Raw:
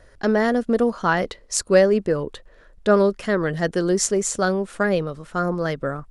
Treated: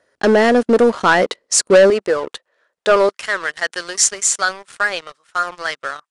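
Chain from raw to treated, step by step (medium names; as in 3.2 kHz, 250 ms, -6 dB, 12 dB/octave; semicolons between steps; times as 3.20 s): high-pass 260 Hz 12 dB/octave, from 1.90 s 600 Hz, from 3.09 s 1.3 kHz; waveshaping leveller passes 3; resampled via 22.05 kHz; trim -1 dB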